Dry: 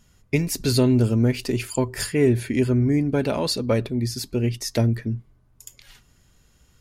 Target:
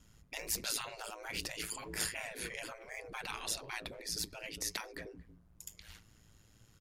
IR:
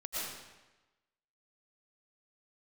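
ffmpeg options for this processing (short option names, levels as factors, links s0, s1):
-filter_complex "[0:a]aeval=exprs='val(0)*sin(2*PI*55*n/s)':c=same,asplit=2[s0][s1];[s1]adelay=230,highpass=300,lowpass=3400,asoftclip=type=hard:threshold=0.126,volume=0.0708[s2];[s0][s2]amix=inputs=2:normalize=0,afftfilt=real='re*lt(hypot(re,im),0.0708)':imag='im*lt(hypot(re,im),0.0708)':win_size=1024:overlap=0.75,volume=0.794"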